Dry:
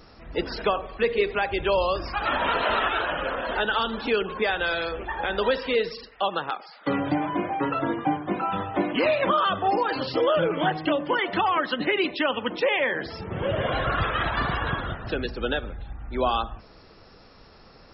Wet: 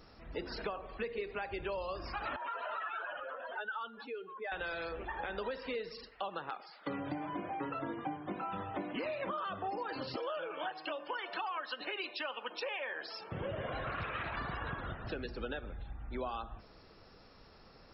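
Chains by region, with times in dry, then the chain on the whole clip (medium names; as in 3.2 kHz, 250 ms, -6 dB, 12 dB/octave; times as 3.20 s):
2.36–4.52 s: spectral contrast enhancement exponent 2.1 + high-pass 1.4 kHz 6 dB/octave
10.16–13.32 s: high-pass 600 Hz + treble shelf 4.7 kHz +9.5 dB + band-stop 2 kHz, Q 5.6
13.86–14.36 s: high-pass 58 Hz 24 dB/octave + peaking EQ 2.4 kHz +7.5 dB 0.32 oct + loudspeaker Doppler distortion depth 0.31 ms
whole clip: de-hum 353.6 Hz, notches 28; dynamic bell 3.3 kHz, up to -8 dB, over -51 dBFS, Q 6.7; compression 4:1, threshold -29 dBFS; trim -7.5 dB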